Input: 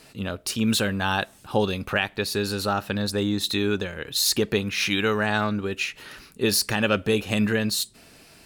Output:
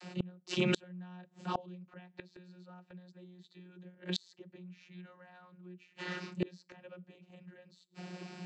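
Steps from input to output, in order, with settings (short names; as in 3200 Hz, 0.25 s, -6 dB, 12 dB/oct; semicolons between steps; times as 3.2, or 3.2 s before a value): vocoder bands 32, saw 180 Hz; flipped gate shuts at -27 dBFS, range -35 dB; gain +8 dB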